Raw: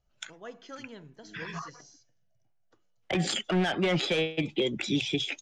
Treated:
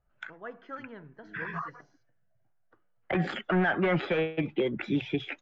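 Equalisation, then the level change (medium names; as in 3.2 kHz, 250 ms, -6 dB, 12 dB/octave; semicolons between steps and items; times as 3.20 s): resonant low-pass 1.6 kHz, resonance Q 1.9; 0.0 dB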